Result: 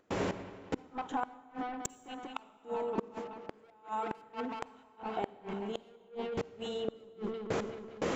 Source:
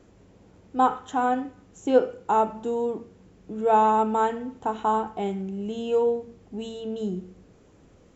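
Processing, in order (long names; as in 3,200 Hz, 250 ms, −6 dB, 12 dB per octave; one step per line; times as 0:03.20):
0:01.89–0:02.39: four-pole ladder band-pass 3,600 Hz, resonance 40%
downward compressor 16 to 1, threshold −35 dBFS, peak gain reduction 20.5 dB
gate pattern ".xx....x..." 146 BPM −24 dB
mid-hump overdrive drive 29 dB, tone 2,300 Hz, clips at −20.5 dBFS
noise gate −53 dBFS, range −48 dB
0:03.00–0:04.32: spectral tilt +3 dB per octave
delay with a low-pass on its return 189 ms, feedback 71%, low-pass 3,400 Hz, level −19 dB
transient designer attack +1 dB, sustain +6 dB
gate with flip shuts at −29 dBFS, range −39 dB
upward compression, threshold −53 dBFS
on a send at −18 dB: convolution reverb RT60 1.7 s, pre-delay 38 ms
on the sum: level +8 dB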